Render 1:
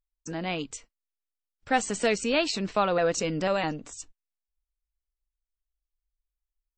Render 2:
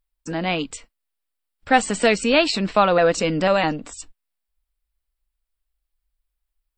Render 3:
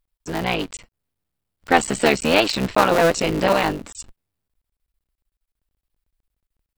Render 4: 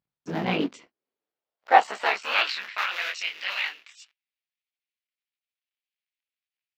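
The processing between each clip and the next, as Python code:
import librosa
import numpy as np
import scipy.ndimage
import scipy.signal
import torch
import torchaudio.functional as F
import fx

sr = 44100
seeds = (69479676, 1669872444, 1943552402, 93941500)

y1 = fx.graphic_eq_31(x, sr, hz=(125, 400, 6300), db=(-10, -4, -11))
y1 = y1 * librosa.db_to_amplitude(8.5)
y2 = fx.cycle_switch(y1, sr, every=3, mode='muted')
y2 = y2 * librosa.db_to_amplitude(2.0)
y3 = scipy.signal.lfilter(np.full(5, 1.0 / 5), 1.0, y2)
y3 = fx.filter_sweep_highpass(y3, sr, from_hz=140.0, to_hz=2400.0, start_s=0.08, end_s=2.98, q=2.0)
y3 = fx.detune_double(y3, sr, cents=58)
y3 = y3 * librosa.db_to_amplitude(-1.0)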